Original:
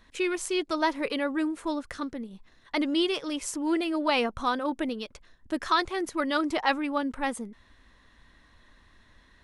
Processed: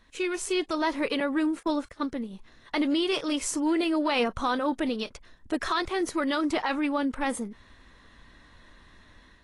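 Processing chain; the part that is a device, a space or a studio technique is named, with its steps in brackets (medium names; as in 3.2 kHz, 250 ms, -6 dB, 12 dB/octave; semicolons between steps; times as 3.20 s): 1.20–2.06 s: gate -36 dBFS, range -30 dB; low-bitrate web radio (level rider gain up to 5.5 dB; peak limiter -15.5 dBFS, peak gain reduction 10 dB; trim -2 dB; AAC 32 kbps 24 kHz)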